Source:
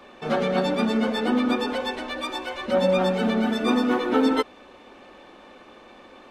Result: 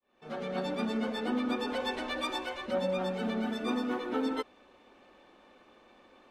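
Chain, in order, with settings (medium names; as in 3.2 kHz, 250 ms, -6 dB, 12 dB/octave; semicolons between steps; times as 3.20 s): fade-in on the opening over 1.31 s; gain riding within 5 dB 0.5 s; trim -8.5 dB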